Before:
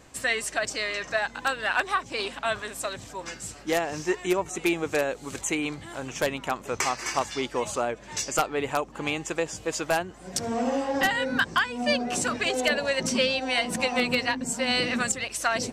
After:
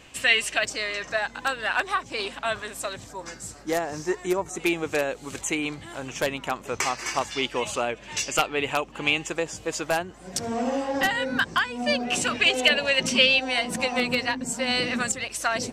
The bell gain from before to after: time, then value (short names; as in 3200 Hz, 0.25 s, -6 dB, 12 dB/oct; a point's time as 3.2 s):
bell 2800 Hz 0.75 oct
+13 dB
from 0.64 s +1 dB
from 3.05 s -7 dB
from 4.6 s +2.5 dB
from 7.36 s +10 dB
from 9.28 s +1 dB
from 12.03 s +10.5 dB
from 13.41 s +0.5 dB